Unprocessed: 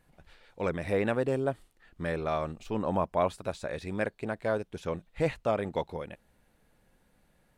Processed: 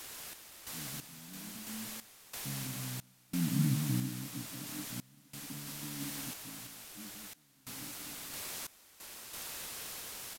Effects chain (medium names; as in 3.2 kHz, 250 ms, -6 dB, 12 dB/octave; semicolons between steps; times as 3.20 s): Doppler pass-by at 2.83 s, 36 m/s, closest 8.6 m; FFT band-pass 160–420 Hz; in parallel at -2 dB: compression, threshold -53 dBFS, peak gain reduction 19.5 dB; on the sum: word length cut 8-bit, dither triangular; tape speed -27%; on a send: delay 180 ms -6 dB; on the sum: random-step tremolo 3 Hz, depth 95%; trim +5 dB